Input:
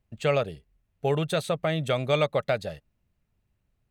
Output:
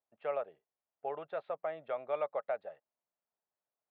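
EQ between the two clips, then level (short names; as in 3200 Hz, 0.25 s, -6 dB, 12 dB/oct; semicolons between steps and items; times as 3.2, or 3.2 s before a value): ladder band-pass 940 Hz, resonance 25%; air absorption 370 m; +3.5 dB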